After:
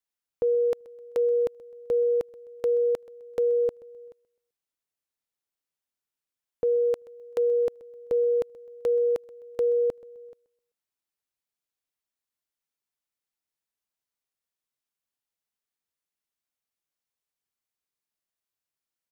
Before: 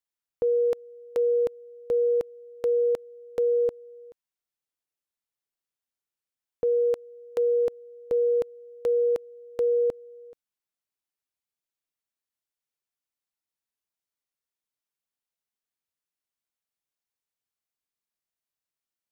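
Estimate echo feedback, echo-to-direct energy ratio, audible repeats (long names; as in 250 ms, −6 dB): 37%, −21.0 dB, 2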